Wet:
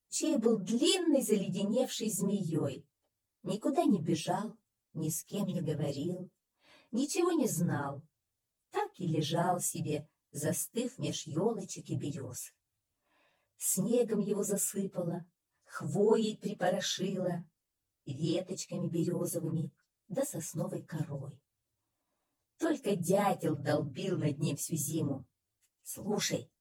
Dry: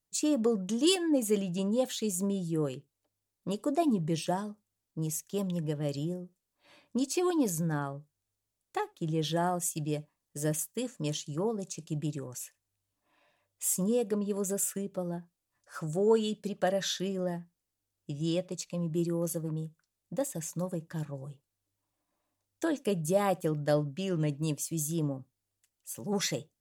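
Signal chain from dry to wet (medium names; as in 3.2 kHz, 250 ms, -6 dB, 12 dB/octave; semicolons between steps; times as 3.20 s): phase randomisation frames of 50 ms; trim -1.5 dB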